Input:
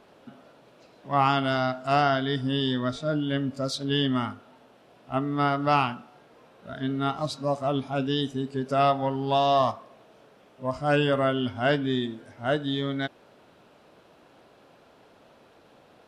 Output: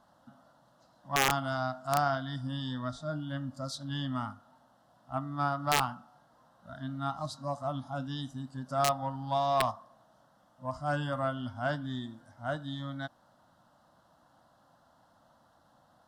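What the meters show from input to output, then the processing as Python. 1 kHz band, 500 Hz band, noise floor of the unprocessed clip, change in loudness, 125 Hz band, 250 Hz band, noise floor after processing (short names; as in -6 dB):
-6.0 dB, -9.5 dB, -57 dBFS, -7.0 dB, -6.0 dB, -10.0 dB, -66 dBFS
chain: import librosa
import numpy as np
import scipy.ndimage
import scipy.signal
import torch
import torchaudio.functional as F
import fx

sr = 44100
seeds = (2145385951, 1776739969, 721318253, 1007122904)

y = fx.fixed_phaser(x, sr, hz=1000.0, stages=4)
y = (np.mod(10.0 ** (13.0 / 20.0) * y + 1.0, 2.0) - 1.0) / 10.0 ** (13.0 / 20.0)
y = fx.cheby_harmonics(y, sr, harmonics=(3,), levels_db=(-23,), full_scale_db=-13.0)
y = y * librosa.db_to_amplitude(-2.5)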